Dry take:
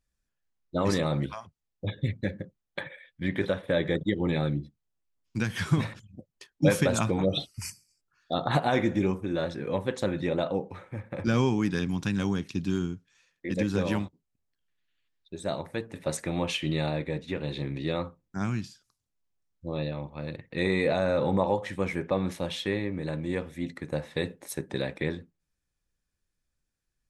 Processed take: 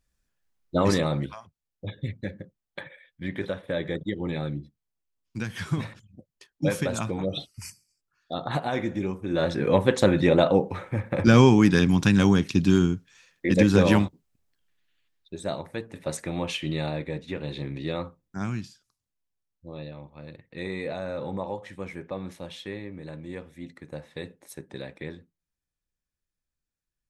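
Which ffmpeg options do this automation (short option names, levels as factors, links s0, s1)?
-af "volume=7.08,afade=t=out:st=0.78:d=0.59:silence=0.398107,afade=t=in:st=9.19:d=0.43:silence=0.251189,afade=t=out:st=14.04:d=1.58:silence=0.334965,afade=t=out:st=18.53:d=1.13:silence=0.473151"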